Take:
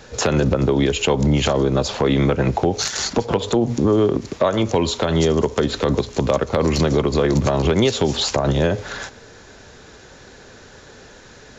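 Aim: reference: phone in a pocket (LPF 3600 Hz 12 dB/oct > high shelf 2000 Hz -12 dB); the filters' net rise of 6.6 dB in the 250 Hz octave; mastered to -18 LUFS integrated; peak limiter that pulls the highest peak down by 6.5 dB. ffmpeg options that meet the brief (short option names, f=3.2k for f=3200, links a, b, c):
-af "equalizer=f=250:t=o:g=9,alimiter=limit=-7.5dB:level=0:latency=1,lowpass=3.6k,highshelf=f=2k:g=-12,volume=0.5dB"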